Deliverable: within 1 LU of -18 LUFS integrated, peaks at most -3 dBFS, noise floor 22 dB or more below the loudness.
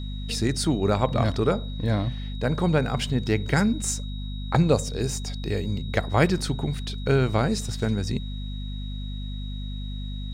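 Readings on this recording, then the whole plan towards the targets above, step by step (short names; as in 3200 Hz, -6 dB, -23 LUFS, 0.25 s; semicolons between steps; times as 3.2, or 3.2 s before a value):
hum 50 Hz; harmonics up to 250 Hz; hum level -30 dBFS; steady tone 3800 Hz; tone level -43 dBFS; loudness -26.0 LUFS; peak -6.0 dBFS; loudness target -18.0 LUFS
-> de-hum 50 Hz, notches 5; notch 3800 Hz, Q 30; gain +8 dB; limiter -3 dBFS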